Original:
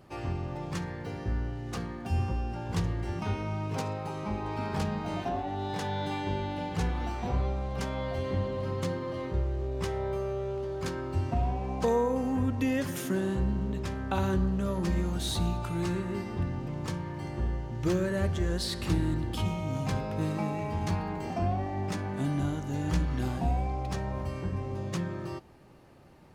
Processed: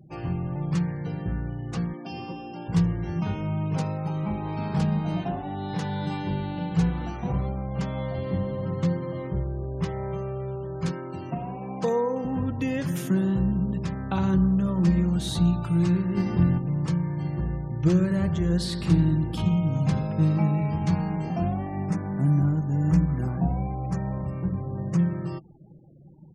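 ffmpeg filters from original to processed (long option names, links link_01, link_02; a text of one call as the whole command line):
ffmpeg -i in.wav -filter_complex "[0:a]asettb=1/sr,asplit=3[link_01][link_02][link_03];[link_01]atrim=end=1.934[link_04];[link_02]atrim=start=1.93:end=2.68,asetpts=PTS-STARTPTS,afade=type=in:duration=0.004:curve=qsin,afade=type=out:start_time=0.746:duration=0.004:curve=qsin,highpass=290,equalizer=frequency=300:width_type=q:width=4:gain=6,equalizer=frequency=1500:width_type=q:width=4:gain=-5,equalizer=frequency=3200:width_type=q:width=4:gain=6,equalizer=frequency=4900:width_type=q:width=4:gain=8,lowpass=frequency=5900:width=0.5412,lowpass=frequency=5900:width=1.3066[link_05];[link_03]atrim=start=2.676[link_06];[link_04][link_05]acrossfade=duration=0.004:curve1=hsin:curve2=qsin[link_07];[link_07][link_06]acrossfade=duration=0.004:curve1=qsin:curve2=hsin,asettb=1/sr,asplit=3[link_08][link_09][link_10];[link_08]atrim=end=7.164[link_11];[link_09]atrim=start=7.16:end=10.11,asetpts=PTS-STARTPTS,afade=type=in:duration=0.004:curve=qsin,afade=type=out:start_time=2.946:duration=0.004:curve=qsin,highshelf=frequency=4700:gain=-5[link_12];[link_10]atrim=start=10.106[link_13];[link_11][link_12]acrossfade=duration=0.004:curve1=hsin:curve2=qsin[link_14];[link_14][link_13]acrossfade=duration=0.004:curve1=qsin:curve2=hsin,asettb=1/sr,asplit=3[link_15][link_16][link_17];[link_15]atrim=end=10.914[link_18];[link_16]atrim=start=10.91:end=12.25,asetpts=PTS-STARTPTS,afade=type=in:duration=0.004:curve=qsin,afade=type=out:start_time=1.336:duration=0.004:curve=qsin,highpass=200[link_19];[link_17]atrim=start=12.246[link_20];[link_18][link_19]acrossfade=duration=0.004:curve1=hsin:curve2=qsin[link_21];[link_21][link_20]acrossfade=duration=0.004:curve1=qsin:curve2=hsin,asettb=1/sr,asplit=3[link_22][link_23][link_24];[link_22]atrim=end=16.174[link_25];[link_23]atrim=start=16.17:end=16.58,asetpts=PTS-STARTPTS,afade=type=in:duration=0.004:curve=qsin,afade=type=out:start_time=0.406:duration=0.004:curve=qsin,acontrast=28[link_26];[link_24]atrim=start=16.576[link_27];[link_25][link_26]acrossfade=duration=0.004:curve1=hsin:curve2=qsin[link_28];[link_28][link_27]acrossfade=duration=0.004:curve1=qsin:curve2=hsin,asplit=3[link_29][link_30][link_31];[link_29]afade=type=out:start_time=18.09:duration=0.02[link_32];[link_30]aecho=1:1:87|174|261|348:0.168|0.0772|0.0355|0.0163,afade=type=in:start_time=18.09:duration=0.02,afade=type=out:start_time=20.92:duration=0.02[link_33];[link_31]afade=type=in:start_time=20.92:duration=0.02[link_34];[link_32][link_33][link_34]amix=inputs=3:normalize=0,asettb=1/sr,asplit=3[link_35][link_36][link_37];[link_35]atrim=end=21.854[link_38];[link_36]atrim=start=21.85:end=24.99,asetpts=PTS-STARTPTS,afade=type=in:duration=0.004:curve=qsin,afade=type=out:start_time=3.136:duration=0.004:curve=qsin,equalizer=frequency=3500:width=1.4:gain=-12[link_39];[link_37]atrim=start=24.986[link_40];[link_38][link_39]acrossfade=duration=0.004:curve1=hsin:curve2=qsin[link_41];[link_41][link_40]acrossfade=duration=0.004:curve1=qsin:curve2=hsin,afftfilt=real='re*gte(hypot(re,im),0.00447)':imag='im*gte(hypot(re,im),0.00447)':win_size=1024:overlap=0.75,equalizer=frequency=160:width=1.9:gain=11,aecho=1:1:6.1:0.3" out.wav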